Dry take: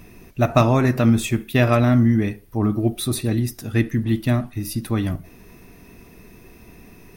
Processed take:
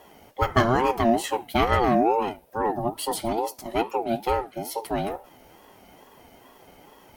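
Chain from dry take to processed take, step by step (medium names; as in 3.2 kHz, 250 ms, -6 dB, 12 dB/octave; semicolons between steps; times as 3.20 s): bass shelf 89 Hz -8.5 dB; comb of notches 170 Hz; ring modulator with a swept carrier 570 Hz, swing 20%, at 2.3 Hz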